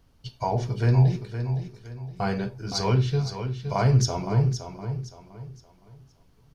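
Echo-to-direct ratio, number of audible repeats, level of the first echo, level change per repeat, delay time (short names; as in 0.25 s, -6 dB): -8.5 dB, 3, -9.0 dB, -9.5 dB, 0.516 s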